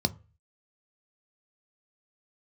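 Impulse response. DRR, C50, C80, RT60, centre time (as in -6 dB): 10.0 dB, 22.5 dB, 28.0 dB, 0.35 s, 3 ms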